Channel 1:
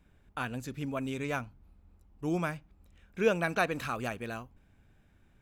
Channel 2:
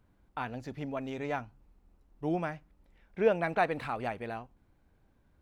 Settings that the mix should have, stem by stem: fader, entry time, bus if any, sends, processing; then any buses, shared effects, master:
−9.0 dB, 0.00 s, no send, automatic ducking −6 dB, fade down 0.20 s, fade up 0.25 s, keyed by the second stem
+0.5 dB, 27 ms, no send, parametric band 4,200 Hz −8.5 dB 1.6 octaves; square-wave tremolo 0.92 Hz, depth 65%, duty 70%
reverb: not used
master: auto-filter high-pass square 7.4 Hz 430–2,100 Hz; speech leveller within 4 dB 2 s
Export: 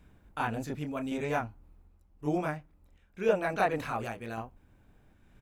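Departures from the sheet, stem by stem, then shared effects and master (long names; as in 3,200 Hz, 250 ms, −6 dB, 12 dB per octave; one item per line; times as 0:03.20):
stem 1 −9.0 dB → +1.0 dB
master: missing auto-filter high-pass square 7.4 Hz 430–2,100 Hz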